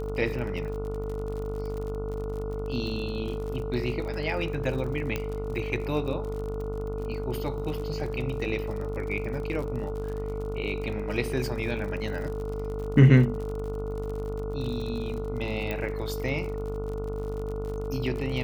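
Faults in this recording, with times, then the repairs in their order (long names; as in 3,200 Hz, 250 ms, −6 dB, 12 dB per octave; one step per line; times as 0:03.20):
mains buzz 50 Hz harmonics 29 −34 dBFS
surface crackle 57 per second −35 dBFS
whistle 440 Hz −33 dBFS
0:05.16: click −15 dBFS
0:15.71: click −18 dBFS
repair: click removal
hum removal 50 Hz, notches 29
notch filter 440 Hz, Q 30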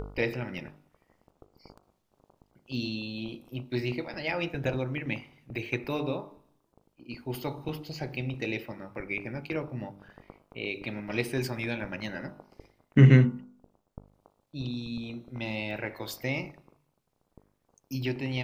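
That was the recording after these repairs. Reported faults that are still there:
0:15.71: click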